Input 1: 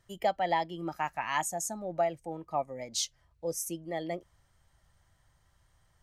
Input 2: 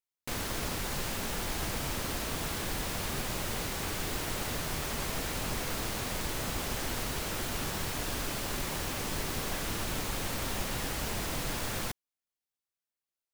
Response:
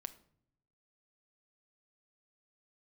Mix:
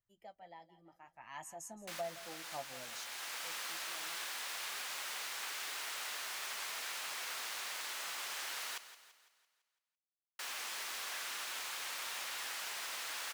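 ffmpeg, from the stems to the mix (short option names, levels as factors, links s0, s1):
-filter_complex "[0:a]flanger=delay=8.2:depth=2.1:regen=-45:speed=0.7:shape=sinusoidal,volume=0.316,afade=t=in:st=1.04:d=0.58:silence=0.237137,afade=t=out:st=2.82:d=0.36:silence=0.237137,asplit=4[s0][s1][s2][s3];[s1]volume=0.0841[s4];[s2]volume=0.168[s5];[1:a]highpass=1200,highshelf=f=9200:g=-7,adelay=1600,volume=0.75,asplit=3[s6][s7][s8];[s6]atrim=end=8.78,asetpts=PTS-STARTPTS,afade=t=out:st=8.776:d=0.004:c=hsin[s9];[s7]atrim=start=8.78:end=10.39,asetpts=PTS-STARTPTS,volume=0[s10];[s8]atrim=start=10.39,asetpts=PTS-STARTPTS,afade=t=in:d=0.004:c=hsin[s11];[s9][s10][s11]concat=n=3:v=0:a=1,asplit=2[s12][s13];[s13]volume=0.211[s14];[s3]apad=whole_len=658637[s15];[s12][s15]sidechaincompress=threshold=0.00355:ratio=8:attack=47:release=976[s16];[2:a]atrim=start_sample=2205[s17];[s4][s17]afir=irnorm=-1:irlink=0[s18];[s5][s14]amix=inputs=2:normalize=0,aecho=0:1:168|336|504|672|840|1008|1176:1|0.48|0.23|0.111|0.0531|0.0255|0.0122[s19];[s0][s16][s18][s19]amix=inputs=4:normalize=0"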